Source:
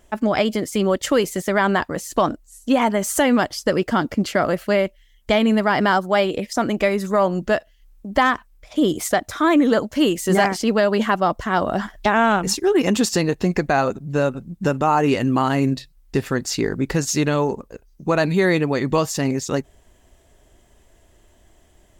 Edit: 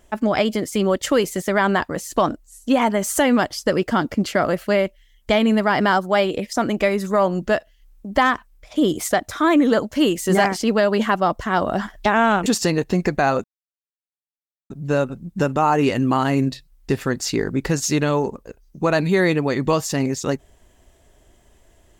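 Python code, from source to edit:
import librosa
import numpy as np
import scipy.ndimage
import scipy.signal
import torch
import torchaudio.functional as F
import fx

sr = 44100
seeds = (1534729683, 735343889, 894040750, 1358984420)

y = fx.edit(x, sr, fx.cut(start_s=12.46, length_s=0.51),
    fx.insert_silence(at_s=13.95, length_s=1.26), tone=tone)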